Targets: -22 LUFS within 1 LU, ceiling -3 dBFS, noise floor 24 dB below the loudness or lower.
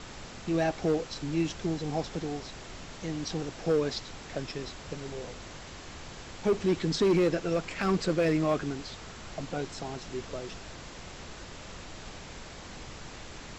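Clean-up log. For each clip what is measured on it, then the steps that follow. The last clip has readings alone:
clipped samples 0.8%; clipping level -19.5 dBFS; noise floor -45 dBFS; noise floor target -56 dBFS; loudness -31.5 LUFS; peak level -19.5 dBFS; loudness target -22.0 LUFS
-> clip repair -19.5 dBFS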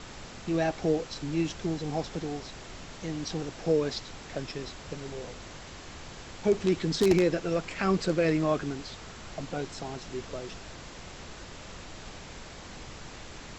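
clipped samples 0.0%; noise floor -45 dBFS; noise floor target -55 dBFS
-> noise print and reduce 10 dB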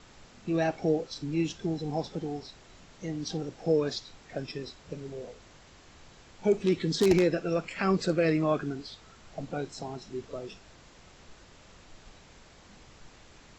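noise floor -55 dBFS; loudness -30.5 LUFS; peak level -10.5 dBFS; loudness target -22.0 LUFS
-> trim +8.5 dB; peak limiter -3 dBFS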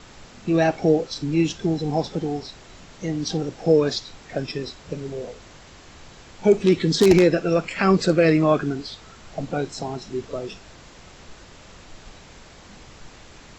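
loudness -22.0 LUFS; peak level -3.0 dBFS; noise floor -47 dBFS

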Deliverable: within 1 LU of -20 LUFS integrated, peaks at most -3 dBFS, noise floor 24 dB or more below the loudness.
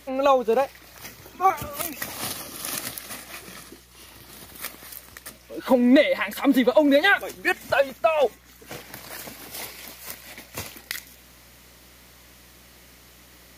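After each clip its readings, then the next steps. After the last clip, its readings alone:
tick rate 19 per s; hum 60 Hz; highest harmonic 180 Hz; hum level -55 dBFS; loudness -22.5 LUFS; peak level -7.5 dBFS; loudness target -20.0 LUFS
-> de-click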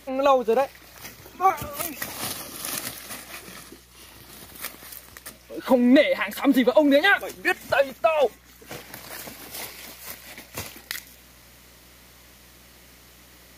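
tick rate 0.37 per s; hum 60 Hz; highest harmonic 180 Hz; hum level -55 dBFS
-> de-hum 60 Hz, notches 3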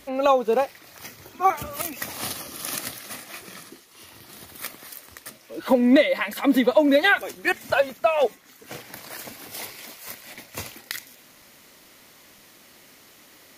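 hum not found; loudness -22.5 LUFS; peak level -6.5 dBFS; loudness target -20.0 LUFS
-> trim +2.5 dB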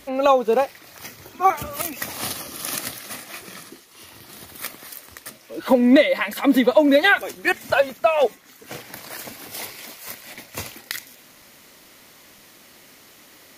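loudness -20.0 LUFS; peak level -4.0 dBFS; noise floor -50 dBFS

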